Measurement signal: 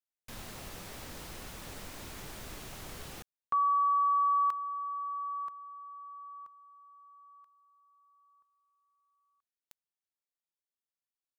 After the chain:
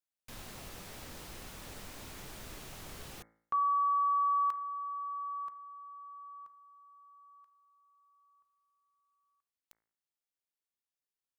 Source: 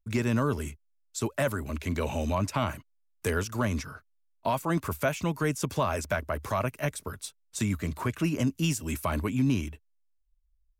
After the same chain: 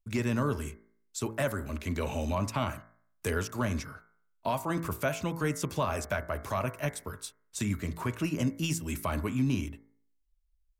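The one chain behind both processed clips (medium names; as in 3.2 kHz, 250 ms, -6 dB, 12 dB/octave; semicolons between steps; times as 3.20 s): de-hum 55.57 Hz, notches 40; trim -2 dB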